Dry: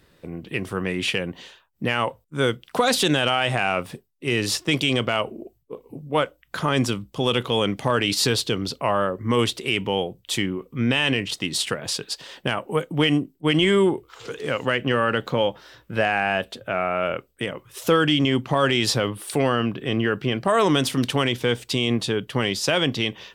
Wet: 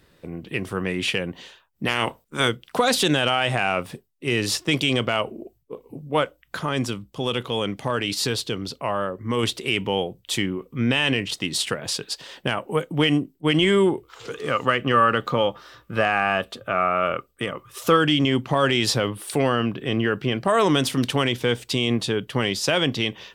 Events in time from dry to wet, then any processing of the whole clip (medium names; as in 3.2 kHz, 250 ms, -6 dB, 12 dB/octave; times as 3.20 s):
1.85–2.47 s: spectral peaks clipped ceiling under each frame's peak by 16 dB
6.58–9.43 s: gain -3.5 dB
14.33–17.97 s: small resonant body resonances 1.2 kHz, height 15 dB